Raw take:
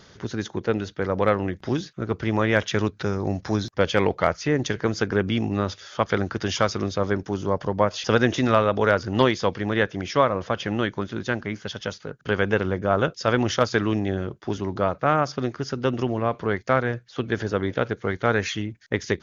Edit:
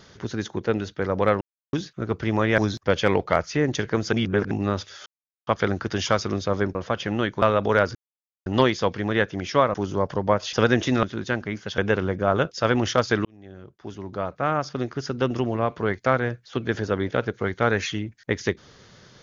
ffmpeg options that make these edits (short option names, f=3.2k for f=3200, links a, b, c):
-filter_complex "[0:a]asplit=14[a][b][c][d][e][f][g][h][i][j][k][l][m][n];[a]atrim=end=1.41,asetpts=PTS-STARTPTS,afade=t=out:st=1.406:d=0.004:c=hsin[o];[b]atrim=start=1.41:end=1.73,asetpts=PTS-STARTPTS,volume=0[p];[c]atrim=start=1.73:end=2.582,asetpts=PTS-STARTPTS,afade=t=in:d=0.004:c=hsin[q];[d]atrim=start=3.488:end=5.042[r];[e]atrim=start=5.038:end=5.422,asetpts=PTS-STARTPTS,areverse[s];[f]atrim=start=5.418:end=5.97,asetpts=PTS-STARTPTS,afade=t=out:st=0.548:d=0.004:c=hsin,apad=pad_dur=0.41[t];[g]atrim=start=5.97:end=7.252,asetpts=PTS-STARTPTS,afade=t=in:d=0.004:c=hsin[u];[h]atrim=start=10.348:end=11.022[v];[i]atrim=start=8.538:end=9.07,asetpts=PTS-STARTPTS,afade=t=out:st=0.528:d=0.004:c=hsin,apad=pad_dur=0.51[w];[j]atrim=start=9.07:end=10.352,asetpts=PTS-STARTPTS,afade=t=in:d=0.004:c=hsin[x];[k]atrim=start=7.248:end=8.542[y];[l]atrim=start=11.018:end=11.772[z];[m]atrim=start=12.408:end=13.88,asetpts=PTS-STARTPTS,afade=t=out:st=1.468:d=0.004:c=hsin[aa];[n]atrim=start=13.88,asetpts=PTS-STARTPTS,afade=t=in:d=1.82[ab];[o][p][q]concat=n=3:v=0:a=1[ac];[ac][r]acrossfade=d=0.004:c1=hsin:c2=hsin[ad];[ad][s]acrossfade=d=0.004:c1=hsin:c2=hsin[ae];[t][u]concat=n=2:v=0:a=1[af];[ae][af]acrossfade=d=0.004:c1=hsin:c2=hsin[ag];[ag][v]acrossfade=d=0.004:c1=hsin:c2=hsin[ah];[w][x]concat=n=2:v=0:a=1[ai];[ah][ai]acrossfade=d=0.004:c1=hsin:c2=hsin[aj];[aj][y]acrossfade=d=0.004:c1=hsin:c2=hsin[ak];[ak][z]acrossfade=d=0.004:c1=hsin:c2=hsin[al];[aa][ab]concat=n=2:v=0:a=1[am];[al][am]acrossfade=d=0.004:c1=hsin:c2=hsin"